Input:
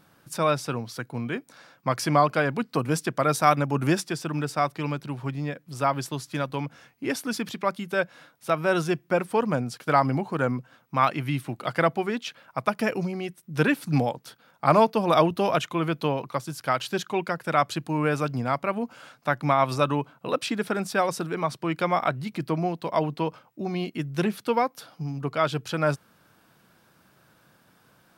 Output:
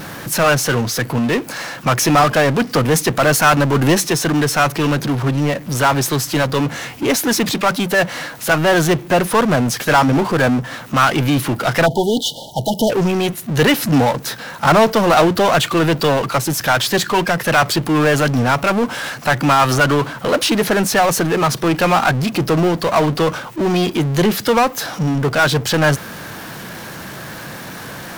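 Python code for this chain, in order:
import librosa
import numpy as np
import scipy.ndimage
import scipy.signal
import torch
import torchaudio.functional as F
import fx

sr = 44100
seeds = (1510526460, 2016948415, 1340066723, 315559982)

y = fx.formant_shift(x, sr, semitones=2)
y = fx.power_curve(y, sr, exponent=0.5)
y = fx.spec_erase(y, sr, start_s=11.86, length_s=1.04, low_hz=940.0, high_hz=2900.0)
y = y * 10.0 ** (2.0 / 20.0)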